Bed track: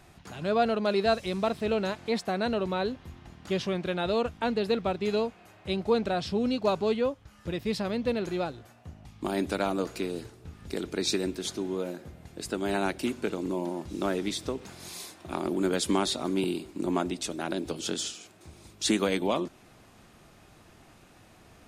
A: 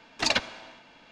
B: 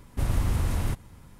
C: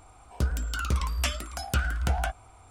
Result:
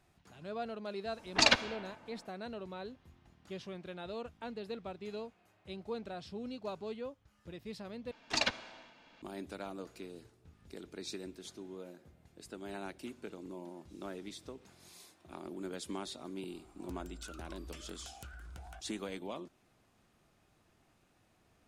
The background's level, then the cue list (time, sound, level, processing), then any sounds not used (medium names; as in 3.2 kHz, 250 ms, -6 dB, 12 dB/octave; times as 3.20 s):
bed track -15 dB
1.16 s: add A -0.5 dB + level-controlled noise filter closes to 970 Hz, open at -24 dBFS
8.11 s: replace with A -7 dB
16.49 s: add C -11 dB + compression 3:1, threshold -39 dBFS
not used: B